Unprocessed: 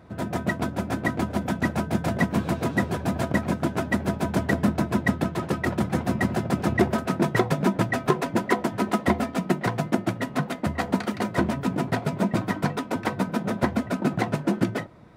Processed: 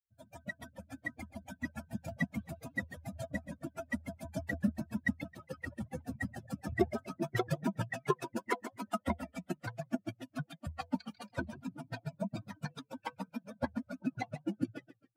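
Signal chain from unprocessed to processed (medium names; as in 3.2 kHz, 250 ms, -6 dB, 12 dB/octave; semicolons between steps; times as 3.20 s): expander on every frequency bin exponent 3; modulated delay 136 ms, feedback 31%, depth 195 cents, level -14.5 dB; trim -4 dB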